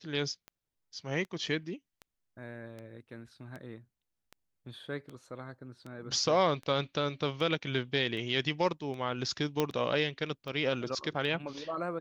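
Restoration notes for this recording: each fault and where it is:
scratch tick 78 rpm −30 dBFS
0:09.60: click −14 dBFS

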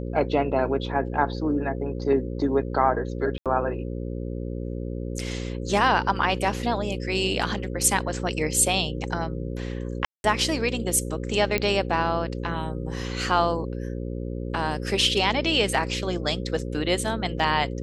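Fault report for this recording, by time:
mains buzz 60 Hz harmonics 9 −31 dBFS
0:03.38–0:03.46: drop-out 77 ms
0:10.05–0:10.24: drop-out 191 ms
0:11.58: click −10 dBFS

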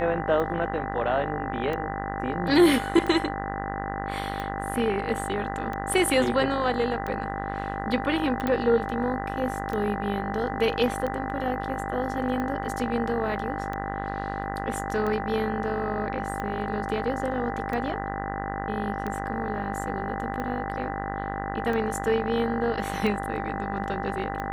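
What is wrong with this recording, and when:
mains buzz 50 Hz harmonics 40 −33 dBFS
scratch tick 45 rpm −19 dBFS
whistle 790 Hz −33 dBFS
0:08.47: click −15 dBFS

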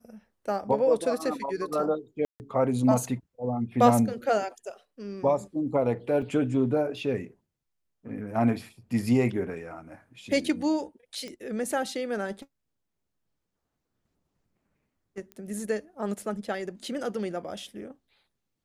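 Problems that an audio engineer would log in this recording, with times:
0:02.25–0:02.40: drop-out 149 ms
0:06.22: drop-out 3.7 ms
0:11.28: click −26 dBFS
0:15.32: click −28 dBFS

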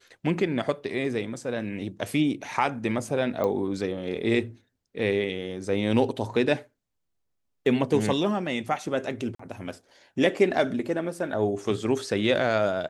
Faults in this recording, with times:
0:03.44: click −16 dBFS
0:09.35–0:09.39: drop-out 44 ms

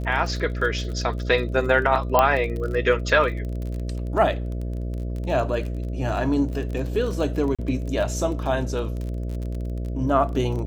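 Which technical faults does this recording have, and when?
mains buzz 60 Hz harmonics 11 −28 dBFS
surface crackle 31 per second −30 dBFS
0:02.19: click −4 dBFS
0:07.55–0:07.59: drop-out 36 ms

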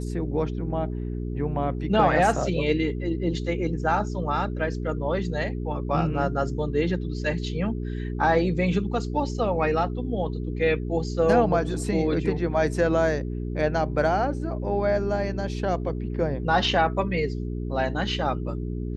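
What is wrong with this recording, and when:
mains hum 60 Hz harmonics 7 −30 dBFS

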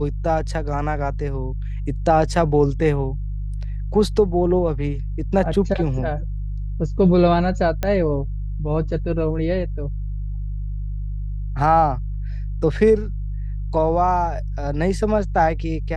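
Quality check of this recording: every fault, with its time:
mains hum 50 Hz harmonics 3 −26 dBFS
0:07.83: click −9 dBFS

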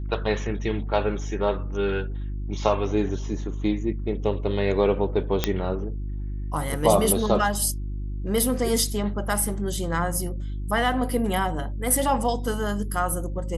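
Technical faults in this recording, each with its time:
mains hum 50 Hz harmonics 7 −30 dBFS
0:05.44: click −5 dBFS

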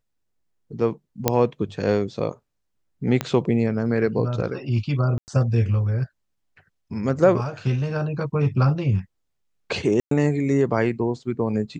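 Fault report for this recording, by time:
0:01.28: click −2 dBFS
0:03.21: click −9 dBFS
0:05.18–0:05.28: drop-out 99 ms
0:10.00–0:10.11: drop-out 113 ms

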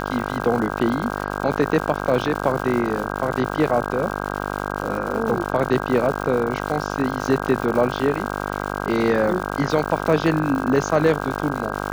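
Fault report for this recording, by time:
mains buzz 50 Hz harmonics 32 −27 dBFS
surface crackle 200 per second −27 dBFS

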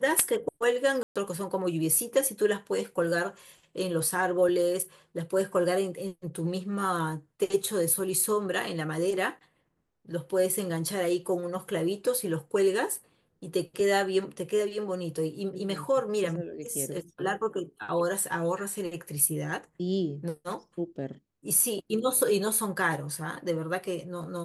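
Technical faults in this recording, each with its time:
0:01.03–0:01.16: drop-out 126 ms

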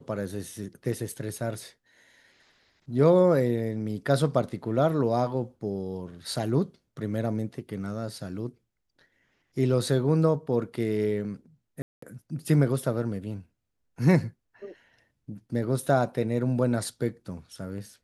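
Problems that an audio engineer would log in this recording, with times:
0:11.82–0:12.02: drop-out 204 ms

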